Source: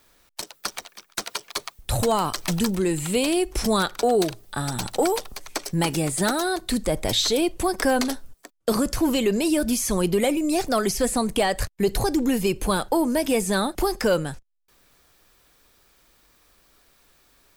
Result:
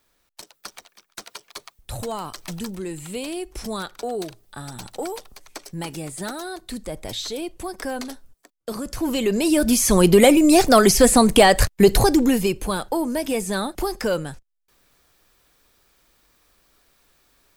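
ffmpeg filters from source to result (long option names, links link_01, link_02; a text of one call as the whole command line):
ffmpeg -i in.wav -af "volume=9dB,afade=type=in:start_time=8.81:duration=0.66:silence=0.298538,afade=type=in:start_time=9.47:duration=0.75:silence=0.473151,afade=type=out:start_time=11.77:duration=0.86:silence=0.281838" out.wav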